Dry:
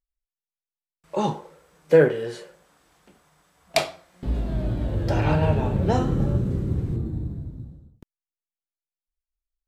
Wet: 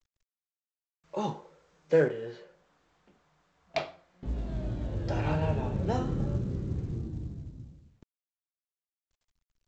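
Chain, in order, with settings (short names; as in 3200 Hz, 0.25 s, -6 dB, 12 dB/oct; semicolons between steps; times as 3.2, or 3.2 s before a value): 2.08–4.38 air absorption 180 m; gain -8 dB; µ-law 128 kbps 16000 Hz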